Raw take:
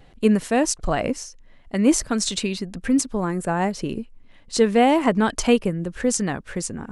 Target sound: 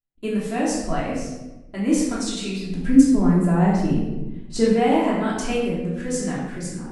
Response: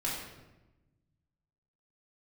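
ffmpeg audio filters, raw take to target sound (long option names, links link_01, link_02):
-filter_complex "[0:a]asettb=1/sr,asplit=3[link_01][link_02][link_03];[link_01]atrim=end=2.674[link_04];[link_02]atrim=start=2.67:end=4.71,asetpts=PTS-STARTPTS,afade=type=in:duration=0.004:curve=qsin,afade=type=out:start_time=2.036:duration=0.004:curve=qsin,lowshelf=frequency=450:gain=10.5[link_05];[link_03]atrim=start=4.706[link_06];[link_04][link_05]acrossfade=duration=0.004:curve1=hsin:curve2=qsin[link_07];[link_07][link_06]acrossfade=duration=0.004:curve1=qsin:curve2=hsin,agate=range=-39dB:threshold=-43dB:ratio=16:detection=peak[link_08];[1:a]atrim=start_sample=2205[link_09];[link_08][link_09]afir=irnorm=-1:irlink=0,volume=-8.5dB"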